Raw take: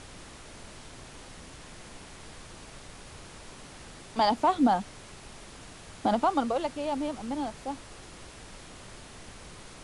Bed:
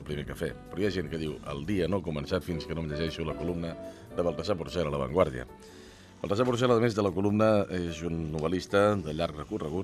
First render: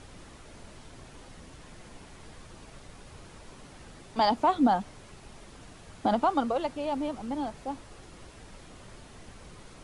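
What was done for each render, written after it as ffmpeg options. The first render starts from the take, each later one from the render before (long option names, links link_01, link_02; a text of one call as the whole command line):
ffmpeg -i in.wav -af "afftdn=noise_reduction=6:noise_floor=-48" out.wav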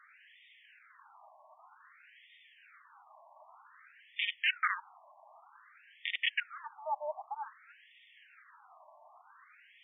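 ffmpeg -i in.wav -af "aeval=exprs='(mod(6.68*val(0)+1,2)-1)/6.68':channel_layout=same,afftfilt=real='re*between(b*sr/1024,800*pow(2600/800,0.5+0.5*sin(2*PI*0.53*pts/sr))/1.41,800*pow(2600/800,0.5+0.5*sin(2*PI*0.53*pts/sr))*1.41)':imag='im*between(b*sr/1024,800*pow(2600/800,0.5+0.5*sin(2*PI*0.53*pts/sr))/1.41,800*pow(2600/800,0.5+0.5*sin(2*PI*0.53*pts/sr))*1.41)':win_size=1024:overlap=0.75" out.wav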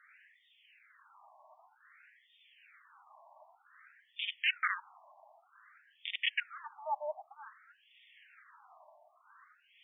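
ffmpeg -i in.wav -filter_complex "[0:a]asplit=2[link_01][link_02];[link_02]afreqshift=-1.1[link_03];[link_01][link_03]amix=inputs=2:normalize=1" out.wav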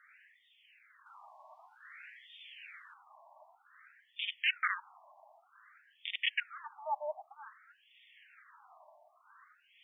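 ffmpeg -i in.wav -filter_complex "[0:a]asettb=1/sr,asplit=3[link_01][link_02][link_03];[link_01]atrim=end=1.064[link_04];[link_02]atrim=start=1.06:end=2.94,asetpts=PTS-STARTPTS,afade=type=in:duration=0.004:curve=qsin,afade=type=out:start_time=1.876:duration=0.004:curve=qsin,equalizer=frequency=3100:width_type=o:width=2.7:gain=12.5[link_05];[link_03]atrim=start=2.936[link_06];[link_04][link_05]acrossfade=duration=0.004:curve1=hsin:curve2=qsin[link_07];[link_07][link_06]acrossfade=duration=0.004:curve1=qsin:curve2=hsin" out.wav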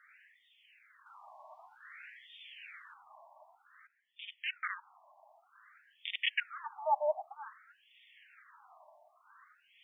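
ffmpeg -i in.wav -filter_complex "[0:a]asettb=1/sr,asplit=3[link_01][link_02][link_03];[link_01]atrim=end=1.274[link_04];[link_02]atrim=start=1.27:end=3.26,asetpts=PTS-STARTPTS,afade=type=in:duration=0.004:curve=qsin,afade=type=out:start_time=1.986:duration=0.004:curve=qsin,lowshelf=frequency=430:gain=11[link_05];[link_03]atrim=start=3.256[link_06];[link_04][link_05]acrossfade=duration=0.004:curve1=hsin:curve2=qsin[link_07];[link_07][link_06]acrossfade=duration=0.004:curve1=qsin:curve2=hsin,asettb=1/sr,asplit=3[link_08][link_09][link_10];[link_08]atrim=end=6.374[link_11];[link_09]atrim=start=6.37:end=7.62,asetpts=PTS-STARTPTS,afade=type=in:duration=0.004:curve=qsin,afade=type=out:start_time=1.246:duration=0.004:curve=qsin,equalizer=frequency=640:width=0.99:gain=7.5[link_12];[link_10]atrim=start=7.616[link_13];[link_11][link_12]acrossfade=duration=0.004:curve1=hsin:curve2=qsin[link_14];[link_14][link_13]acrossfade=duration=0.004:curve1=qsin:curve2=hsin,asplit=2[link_15][link_16];[link_15]atrim=end=3.87,asetpts=PTS-STARTPTS,afade=type=out:start_time=3.866:duration=0.004:curve=hsin:silence=0.141254[link_17];[link_16]atrim=start=3.87,asetpts=PTS-STARTPTS,afade=type=in:duration=1.75:silence=0.141254[link_18];[link_17][link_18]concat=n=2:v=0:a=1" out.wav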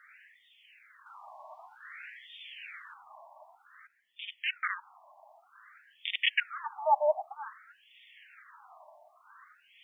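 ffmpeg -i in.wav -af "volume=5dB" out.wav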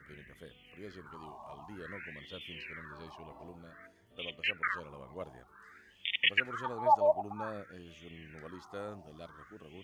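ffmpeg -i in.wav -i bed.wav -filter_complex "[1:a]volume=-19dB[link_01];[0:a][link_01]amix=inputs=2:normalize=0" out.wav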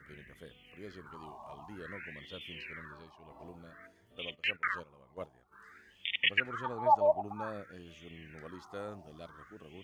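ffmpeg -i in.wav -filter_complex "[0:a]asplit=3[link_01][link_02][link_03];[link_01]afade=type=out:start_time=4.34:duration=0.02[link_04];[link_02]agate=range=-11dB:threshold=-46dB:ratio=16:release=100:detection=peak,afade=type=in:start_time=4.34:duration=0.02,afade=type=out:start_time=5.51:duration=0.02[link_05];[link_03]afade=type=in:start_time=5.51:duration=0.02[link_06];[link_04][link_05][link_06]amix=inputs=3:normalize=0,asettb=1/sr,asplit=3[link_07][link_08][link_09];[link_07]atrim=end=6.074[link_10];[link_08]atrim=start=6.07:end=7.28,asetpts=PTS-STARTPTS,afade=type=in:duration=0.004:curve=qsin,afade=type=out:start_time=1.206:duration=0.004:curve=qsin,bass=frequency=250:gain=2,treble=frequency=4000:gain=-5[link_11];[link_09]atrim=start=7.276[link_12];[link_10][link_11]acrossfade=duration=0.004:curve1=hsin:curve2=qsin[link_13];[link_13][link_12]acrossfade=duration=0.004:curve1=qsin:curve2=hsin,asplit=3[link_14][link_15][link_16];[link_14]atrim=end=3.1,asetpts=PTS-STARTPTS,afade=type=out:start_time=2.85:duration=0.25:silence=0.398107[link_17];[link_15]atrim=start=3.1:end=3.19,asetpts=PTS-STARTPTS,volume=-8dB[link_18];[link_16]atrim=start=3.19,asetpts=PTS-STARTPTS,afade=type=in:duration=0.25:silence=0.398107[link_19];[link_17][link_18][link_19]concat=n=3:v=0:a=1" out.wav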